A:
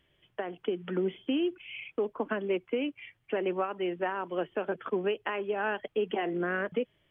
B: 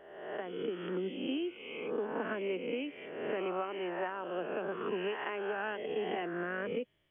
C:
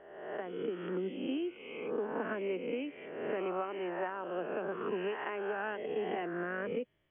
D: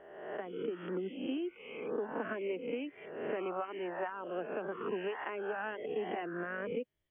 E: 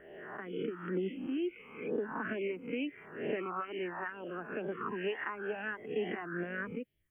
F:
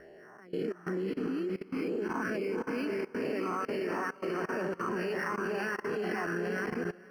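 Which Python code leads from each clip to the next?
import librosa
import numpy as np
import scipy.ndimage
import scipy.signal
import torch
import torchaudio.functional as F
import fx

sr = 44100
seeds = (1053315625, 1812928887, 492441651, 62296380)

y1 = fx.spec_swells(x, sr, rise_s=1.15)
y1 = F.gain(torch.from_numpy(y1), -7.5).numpy()
y2 = scipy.signal.sosfilt(scipy.signal.butter(2, 2500.0, 'lowpass', fs=sr, output='sos'), y1)
y3 = fx.dereverb_blind(y2, sr, rt60_s=0.73)
y4 = fx.phaser_stages(y3, sr, stages=4, low_hz=500.0, high_hz=1200.0, hz=2.2, feedback_pct=35)
y4 = F.gain(torch.from_numpy(y4), 5.0).numpy()
y5 = fx.echo_diffused(y4, sr, ms=520, feedback_pct=47, wet_db=-3.5)
y5 = fx.level_steps(y5, sr, step_db=20)
y5 = np.interp(np.arange(len(y5)), np.arange(len(y5))[::6], y5[::6])
y5 = F.gain(torch.from_numpy(y5), 7.5).numpy()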